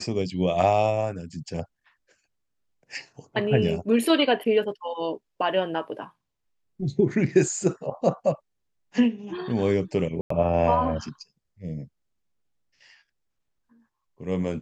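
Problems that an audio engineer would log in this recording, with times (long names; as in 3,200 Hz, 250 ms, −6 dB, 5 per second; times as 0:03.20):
0:10.21–0:10.30: drop-out 94 ms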